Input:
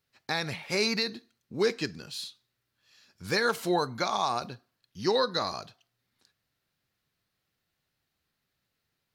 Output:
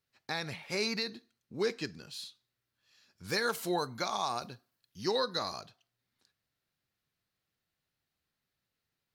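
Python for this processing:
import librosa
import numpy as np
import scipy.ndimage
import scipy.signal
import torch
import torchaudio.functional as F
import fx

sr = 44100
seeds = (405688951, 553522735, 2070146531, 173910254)

y = fx.high_shelf(x, sr, hz=7300.0, db=9.0, at=(3.29, 5.61))
y = y * librosa.db_to_amplitude(-5.5)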